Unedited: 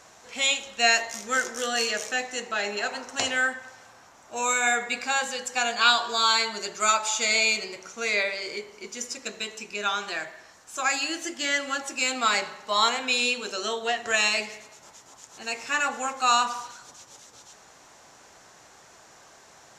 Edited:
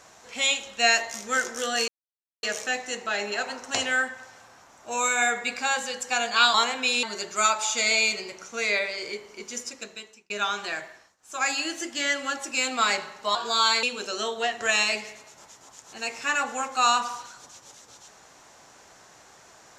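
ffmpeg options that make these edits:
ffmpeg -i in.wav -filter_complex "[0:a]asplit=8[link_01][link_02][link_03][link_04][link_05][link_06][link_07][link_08];[link_01]atrim=end=1.88,asetpts=PTS-STARTPTS,afade=type=out:start_time=1.876:duration=0.004:curve=hsin,apad=pad_dur=0.55[link_09];[link_02]atrim=start=1.88:end=5.992,asetpts=PTS-STARTPTS,afade=type=in:duration=0.004:curve=hsin[link_10];[link_03]atrim=start=12.788:end=13.282[link_11];[link_04]atrim=start=6.468:end=9.74,asetpts=PTS-STARTPTS,afade=type=out:start_time=2.532:duration=0.74[link_12];[link_05]atrim=start=9.74:end=10.61,asetpts=PTS-STARTPTS,afade=type=in:duration=0.004:curve=hsin,afade=type=out:start_time=0.57:duration=0.3:silence=0.0944061[link_13];[link_06]atrim=start=10.61:end=12.792,asetpts=PTS-STARTPTS,afade=type=in:duration=0.3:silence=0.0944061[link_14];[link_07]atrim=start=5.988:end=6.472[link_15];[link_08]atrim=start=13.278[link_16];[link_09][link_10]concat=n=2:v=0:a=1[link_17];[link_17][link_11]acrossfade=duration=0.004:curve1=hsin:curve2=hsin[link_18];[link_12][link_13][link_14]concat=n=3:v=0:a=1[link_19];[link_18][link_19]acrossfade=duration=0.004:curve1=hsin:curve2=hsin[link_20];[link_20][link_15]acrossfade=duration=0.004:curve1=hsin:curve2=hsin[link_21];[link_21][link_16]acrossfade=duration=0.004:curve1=hsin:curve2=hsin" out.wav

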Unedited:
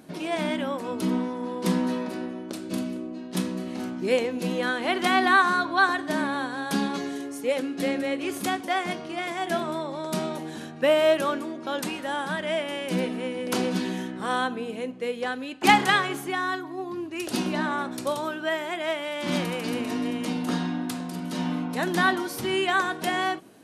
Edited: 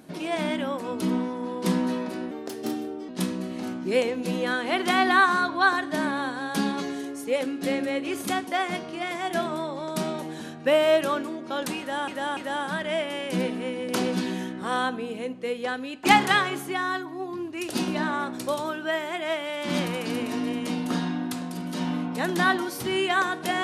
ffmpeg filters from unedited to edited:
ffmpeg -i in.wav -filter_complex "[0:a]asplit=5[link_01][link_02][link_03][link_04][link_05];[link_01]atrim=end=2.314[link_06];[link_02]atrim=start=2.31:end=3.25,asetpts=PTS-STARTPTS,asetrate=53361,aresample=44100[link_07];[link_03]atrim=start=3.246:end=12.242[link_08];[link_04]atrim=start=11.948:end=12.242[link_09];[link_05]atrim=start=11.948[link_10];[link_06][link_07]acrossfade=duration=0.004:curve1=hsin:curve2=hsin[link_11];[link_11][link_08]acrossfade=duration=0.004:curve1=hsin:curve2=hsin[link_12];[link_12][link_09]acrossfade=duration=0.004:curve1=hsin:curve2=hsin[link_13];[link_13][link_10]acrossfade=duration=0.004:curve1=hsin:curve2=hsin" out.wav

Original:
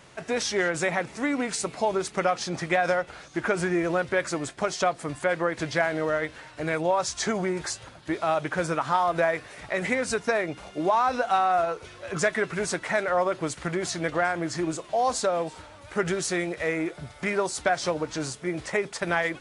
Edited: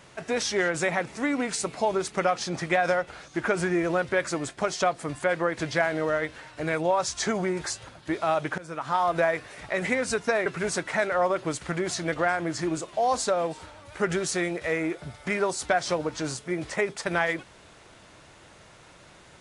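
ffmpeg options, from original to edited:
ffmpeg -i in.wav -filter_complex "[0:a]asplit=3[link_01][link_02][link_03];[link_01]atrim=end=8.58,asetpts=PTS-STARTPTS,afade=type=out:start_time=8.576:duration=0.004:curve=hsin:silence=0.0794328[link_04];[link_02]atrim=start=8.58:end=10.462,asetpts=PTS-STARTPTS,afade=type=in:duration=0.47:silence=0.0794328[link_05];[link_03]atrim=start=12.418[link_06];[link_04][link_05]concat=n=2:v=0:a=1[link_07];[link_07][link_06]acrossfade=duration=0.004:curve1=hsin:curve2=hsin" out.wav

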